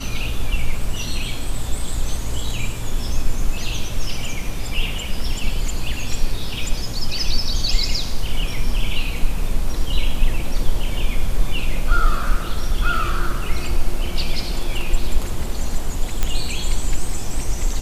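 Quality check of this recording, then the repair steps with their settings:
16.23 pop -6 dBFS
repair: de-click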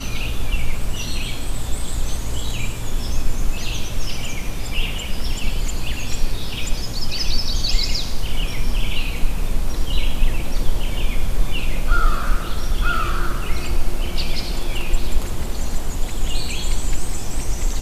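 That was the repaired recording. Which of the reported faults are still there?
none

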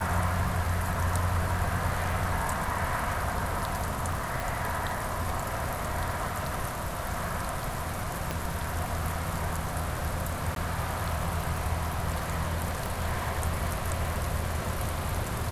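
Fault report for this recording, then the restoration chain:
crackle 26/s -34 dBFS
4.4 pop
8.31 pop
10.55–10.56 gap 12 ms
12.86 pop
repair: de-click; interpolate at 10.55, 12 ms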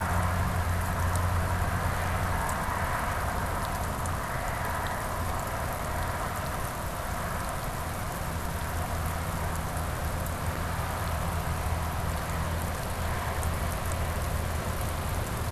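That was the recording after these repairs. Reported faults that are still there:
8.31 pop

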